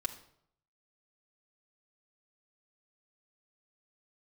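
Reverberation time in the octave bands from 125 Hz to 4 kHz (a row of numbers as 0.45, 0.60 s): 0.85, 0.70, 0.75, 0.65, 0.55, 0.55 s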